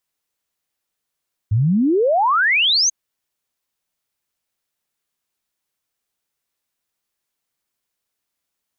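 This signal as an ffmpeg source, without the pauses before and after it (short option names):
-f lavfi -i "aevalsrc='0.224*clip(min(t,1.39-t)/0.01,0,1)*sin(2*PI*98*1.39/log(6600/98)*(exp(log(6600/98)*t/1.39)-1))':d=1.39:s=44100"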